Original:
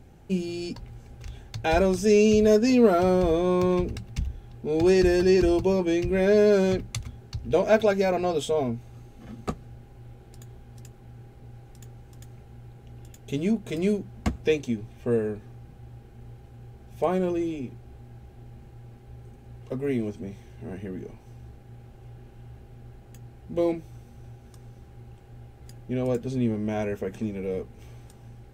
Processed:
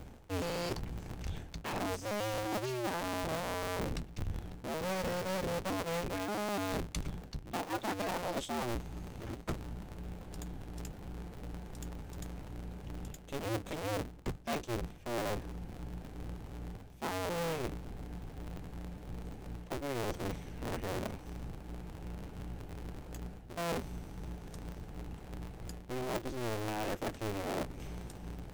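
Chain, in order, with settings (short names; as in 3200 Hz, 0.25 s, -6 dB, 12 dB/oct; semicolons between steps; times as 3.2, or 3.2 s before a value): cycle switcher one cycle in 2, inverted; reverse; compressor 16:1, threshold -35 dBFS, peak gain reduction 22.5 dB; reverse; gain +2 dB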